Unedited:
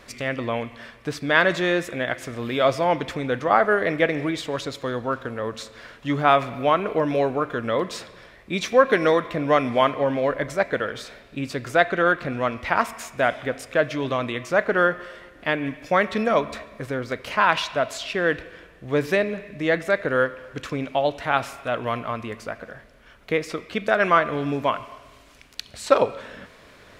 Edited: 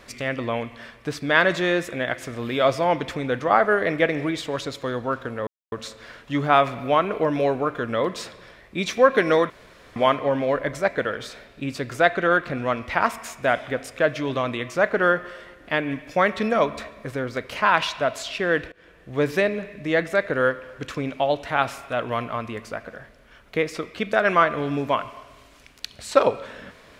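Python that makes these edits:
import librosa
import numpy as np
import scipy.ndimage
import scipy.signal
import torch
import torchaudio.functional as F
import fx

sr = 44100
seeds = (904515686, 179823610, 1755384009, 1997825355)

y = fx.edit(x, sr, fx.insert_silence(at_s=5.47, length_s=0.25),
    fx.room_tone_fill(start_s=9.25, length_s=0.46),
    fx.fade_in_from(start_s=18.47, length_s=0.46, curve='qsin', floor_db=-23.0), tone=tone)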